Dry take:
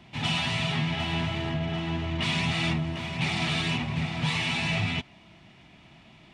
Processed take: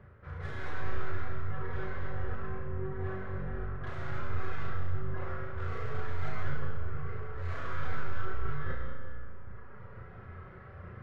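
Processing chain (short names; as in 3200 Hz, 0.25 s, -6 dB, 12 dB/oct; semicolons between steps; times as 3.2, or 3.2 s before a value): tracing distortion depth 0.08 ms; tone controls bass +4 dB, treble -9 dB; notches 50/100 Hz; flutter echo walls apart 3.4 m, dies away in 0.3 s; reverb removal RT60 1.1 s; high shelf 4600 Hz -5.5 dB; reverse; compressor 8:1, threshold -40 dBFS, peak gain reduction 21 dB; reverse; wide varispeed 0.575×; on a send at -2 dB: reverb RT60 2.5 s, pre-delay 60 ms; on the sum: gain +4 dB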